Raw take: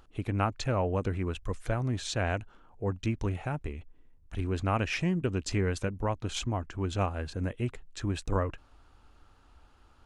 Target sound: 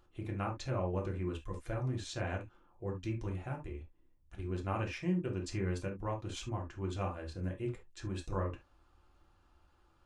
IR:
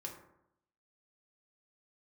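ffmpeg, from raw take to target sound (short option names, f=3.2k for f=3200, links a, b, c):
-filter_complex "[0:a]asettb=1/sr,asplit=3[a][b][c];[a]atrim=end=4.354[d];[b]atrim=start=4.35:end=5.41,asetpts=PTS-STARTPTS,afade=t=in:d=0.004:c=qsin,afade=t=out:st=1.056:d=0.004:c=qsin,agate=range=-33dB:threshold=-28dB:ratio=3:detection=peak[e];[c]atrim=start=5.406[f];[d][e]acrossfade=d=0.004:c1=hsin:c2=qsin[g];[g][f]acrossfade=d=0.004:c1=qsin:c2=hsin[h];[1:a]atrim=start_sample=2205,atrim=end_sample=3528[i];[h][i]afir=irnorm=-1:irlink=0,volume=-5dB"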